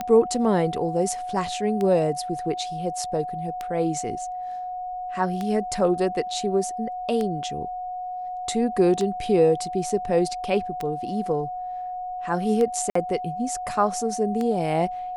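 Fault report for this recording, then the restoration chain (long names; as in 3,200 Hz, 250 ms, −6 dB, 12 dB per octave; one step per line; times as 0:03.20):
scratch tick 33 1/3 rpm −15 dBFS
whistle 730 Hz −29 dBFS
0:12.90–0:12.95: drop-out 54 ms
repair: click removal
notch filter 730 Hz, Q 30
repair the gap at 0:12.90, 54 ms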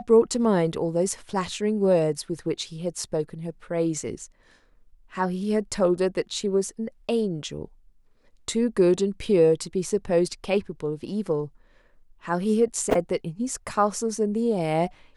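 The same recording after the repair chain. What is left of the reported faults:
none of them is left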